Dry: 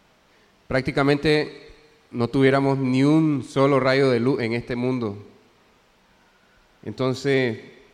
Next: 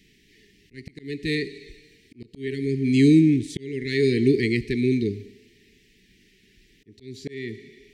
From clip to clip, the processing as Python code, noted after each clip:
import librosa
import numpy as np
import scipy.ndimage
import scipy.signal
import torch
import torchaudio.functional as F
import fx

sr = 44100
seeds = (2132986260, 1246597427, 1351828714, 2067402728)

y = scipy.signal.sosfilt(scipy.signal.cheby1(5, 1.0, [430.0, 1800.0], 'bandstop', fs=sr, output='sos'), x)
y = fx.auto_swell(y, sr, attack_ms=702.0)
y = y * 10.0 ** (3.0 / 20.0)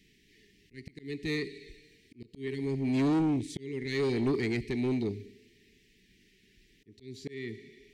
y = 10.0 ** (-18.0 / 20.0) * np.tanh(x / 10.0 ** (-18.0 / 20.0))
y = y * 10.0 ** (-5.5 / 20.0)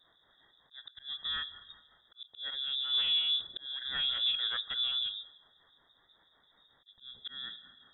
y = fx.harmonic_tremolo(x, sr, hz=5.4, depth_pct=70, crossover_hz=400.0)
y = fx.freq_invert(y, sr, carrier_hz=3700)